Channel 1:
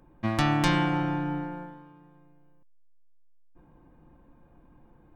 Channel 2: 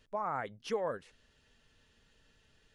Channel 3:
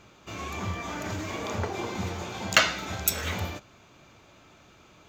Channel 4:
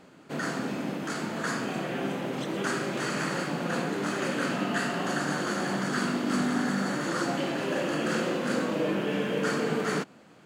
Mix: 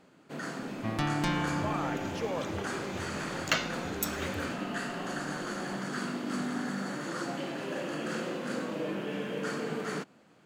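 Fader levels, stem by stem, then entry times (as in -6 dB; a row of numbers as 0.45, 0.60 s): -6.5, -1.0, -8.5, -6.5 dB; 0.60, 1.50, 0.95, 0.00 s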